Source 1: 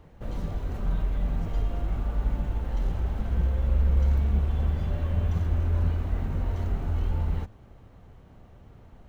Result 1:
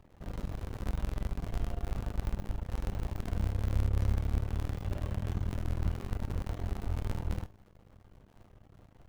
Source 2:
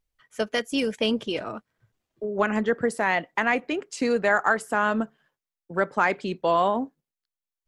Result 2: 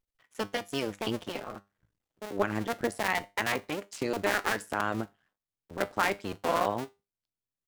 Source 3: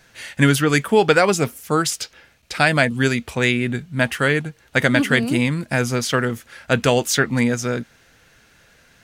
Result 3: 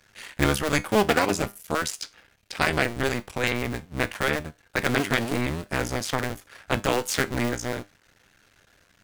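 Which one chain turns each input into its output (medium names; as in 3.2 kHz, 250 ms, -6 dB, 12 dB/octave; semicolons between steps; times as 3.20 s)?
cycle switcher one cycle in 2, muted; feedback comb 100 Hz, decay 0.25 s, harmonics all, mix 50%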